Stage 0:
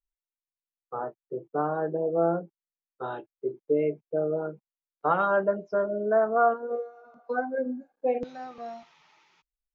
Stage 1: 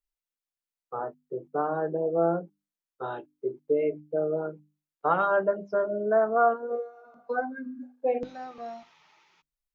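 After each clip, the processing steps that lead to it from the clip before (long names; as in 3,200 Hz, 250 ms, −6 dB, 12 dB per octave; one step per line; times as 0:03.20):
gain on a spectral selection 0:07.52–0:07.83, 320–960 Hz −26 dB
mains-hum notches 50/100/150/200/250/300 Hz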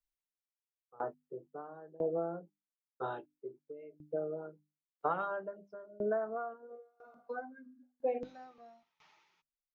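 downward compressor, threshold −24 dBFS, peak gain reduction 7.5 dB
tremolo with a ramp in dB decaying 1 Hz, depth 23 dB
level −2.5 dB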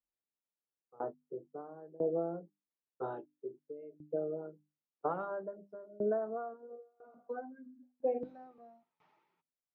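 resonant band-pass 290 Hz, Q 0.58
level +2.5 dB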